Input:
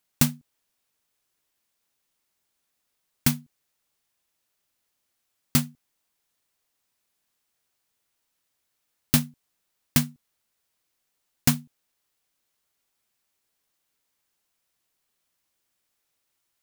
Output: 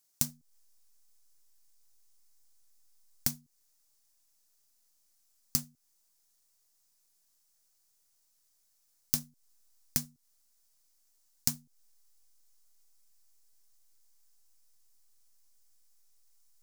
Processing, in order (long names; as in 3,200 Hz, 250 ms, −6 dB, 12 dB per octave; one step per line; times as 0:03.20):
in parallel at −6 dB: slack as between gear wheels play −25 dBFS
on the sum: downward compressor 10 to 1, threshold −29 dBFS, peak gain reduction 18.5 dB
high shelf with overshoot 4,100 Hz +9 dB, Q 1.5
level −4.5 dB